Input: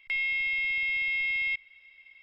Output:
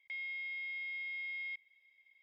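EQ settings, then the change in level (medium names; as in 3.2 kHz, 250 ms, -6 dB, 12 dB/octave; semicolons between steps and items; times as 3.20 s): boxcar filter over 32 samples; differentiator; peaking EQ 130 Hz -3.5 dB 0.67 oct; +12.0 dB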